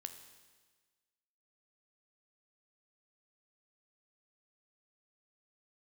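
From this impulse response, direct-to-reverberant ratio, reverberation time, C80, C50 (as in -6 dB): 7.5 dB, 1.4 s, 11.0 dB, 9.5 dB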